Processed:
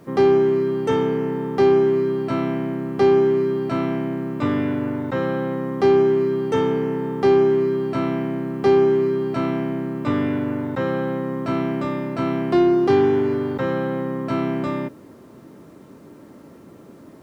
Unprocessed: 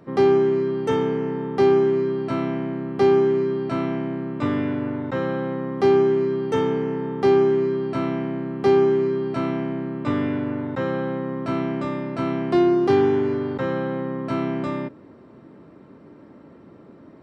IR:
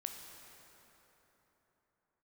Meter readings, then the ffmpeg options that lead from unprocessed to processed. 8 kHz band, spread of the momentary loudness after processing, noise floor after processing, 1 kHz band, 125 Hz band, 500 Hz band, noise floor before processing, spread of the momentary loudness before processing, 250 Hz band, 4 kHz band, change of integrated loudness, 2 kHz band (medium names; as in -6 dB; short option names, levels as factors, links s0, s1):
no reading, 9 LU, -45 dBFS, +1.5 dB, +2.0 dB, +1.5 dB, -47 dBFS, 10 LU, +1.5 dB, +1.5 dB, +1.5 dB, +1.5 dB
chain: -filter_complex "[0:a]asplit=2[s0][s1];[s1]asoftclip=type=tanh:threshold=0.119,volume=0.299[s2];[s0][s2]amix=inputs=2:normalize=0,acrusher=bits=9:mix=0:aa=0.000001"